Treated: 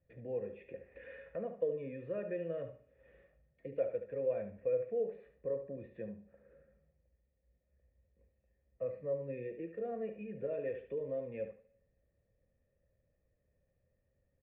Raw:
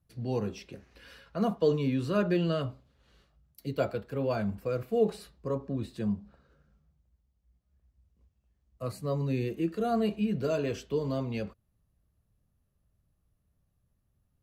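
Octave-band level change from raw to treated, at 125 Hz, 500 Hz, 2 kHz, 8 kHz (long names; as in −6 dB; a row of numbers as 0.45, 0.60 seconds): −18.0 dB, −5.5 dB, −11.5 dB, below −25 dB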